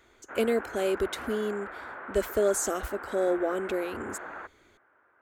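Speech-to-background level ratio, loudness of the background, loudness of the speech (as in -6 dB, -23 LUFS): 10.5 dB, -40.5 LUFS, -30.0 LUFS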